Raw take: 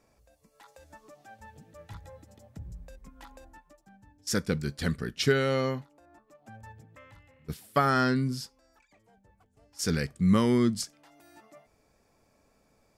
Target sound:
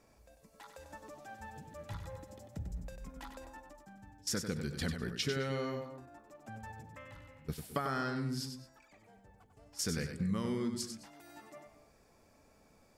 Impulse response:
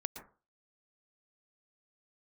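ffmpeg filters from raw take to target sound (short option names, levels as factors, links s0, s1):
-filter_complex "[0:a]acompressor=threshold=0.0178:ratio=5,asplit=2[s0][s1];[1:a]atrim=start_sample=2205,adelay=96[s2];[s1][s2]afir=irnorm=-1:irlink=0,volume=0.531[s3];[s0][s3]amix=inputs=2:normalize=0,volume=1.12"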